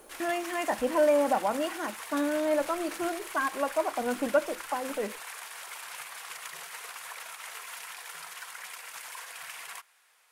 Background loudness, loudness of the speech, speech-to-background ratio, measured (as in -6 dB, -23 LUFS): -40.5 LUFS, -29.5 LUFS, 11.0 dB